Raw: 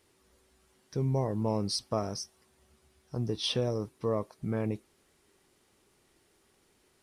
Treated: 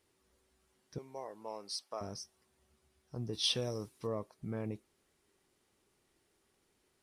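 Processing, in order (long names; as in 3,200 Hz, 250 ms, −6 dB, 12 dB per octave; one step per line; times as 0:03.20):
0:00.98–0:02.01: high-pass filter 600 Hz 12 dB per octave
0:03.33–0:04.07: high-shelf EQ 2,400 Hz +11 dB
level −7.5 dB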